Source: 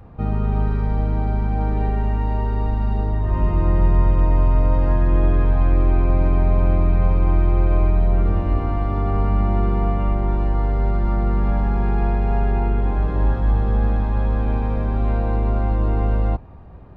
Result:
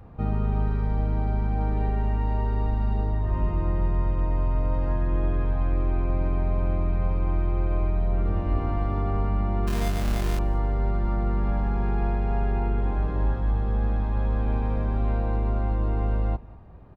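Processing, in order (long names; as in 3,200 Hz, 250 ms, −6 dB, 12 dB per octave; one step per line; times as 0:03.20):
0:09.67–0:10.39: sample-rate reduction 1,400 Hz, jitter 0%
on a send: repeating echo 192 ms, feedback 31%, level −23 dB
on the sum: speech leveller within 3 dB 0.5 s
level −6 dB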